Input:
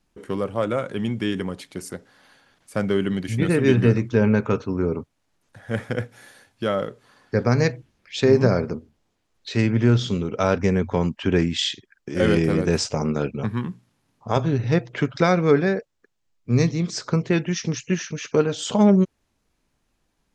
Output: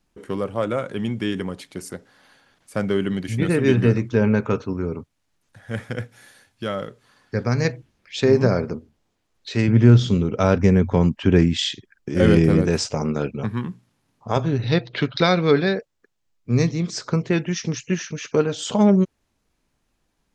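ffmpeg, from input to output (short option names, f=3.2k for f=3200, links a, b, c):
-filter_complex "[0:a]asettb=1/sr,asplit=3[a][b][c];[a]atrim=end=4.734[d];[b]atrim=start=4.73:end=7.65,asetpts=PTS-STARTPTS,afade=t=in:d=0.004:c=qsin,afade=t=out:st=2.916:d=0.004:c=qsin,equalizer=f=530:w=0.43:g=-4.5[e];[c]atrim=start=7.646[f];[d][e]acrossfade=d=0.004:c1=hsin:c2=qsin[g];[g][f]acrossfade=d=0.004:c1=qsin:c2=hsin,asettb=1/sr,asplit=3[h][i][j];[h]atrim=end=9.684[k];[i]atrim=start=9.68:end=12.67,asetpts=PTS-STARTPTS,afade=t=in:d=0.004:c=qsin,afade=t=out:st=2.986:d=0.004:c=qsin,lowshelf=f=290:g=7.5[l];[j]atrim=start=12.666[m];[k][l]acrossfade=d=0.004:c1=hsin:c2=qsin[n];[n][m]acrossfade=d=0.004:c1=qsin:c2=hsin,asettb=1/sr,asplit=3[o][p][q];[o]atrim=end=14.624[r];[p]atrim=start=14.62:end=15.77,asetpts=PTS-STARTPTS,afade=t=in:d=0.004:c=qsin,afade=t=out:st=1.146:d=0.004:c=qsin,lowpass=f=4.1k:t=q:w=5.9[s];[q]atrim=start=15.766[t];[r][s]acrossfade=d=0.004:c1=hsin:c2=qsin[u];[u][t]acrossfade=d=0.004:c1=qsin:c2=hsin"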